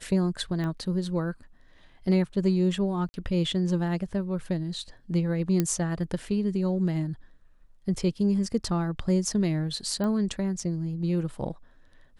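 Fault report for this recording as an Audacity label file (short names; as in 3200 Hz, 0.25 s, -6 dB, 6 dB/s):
0.640000	0.640000	pop -22 dBFS
3.090000	3.140000	gap 50 ms
5.600000	5.600000	pop -11 dBFS
10.040000	10.040000	pop -19 dBFS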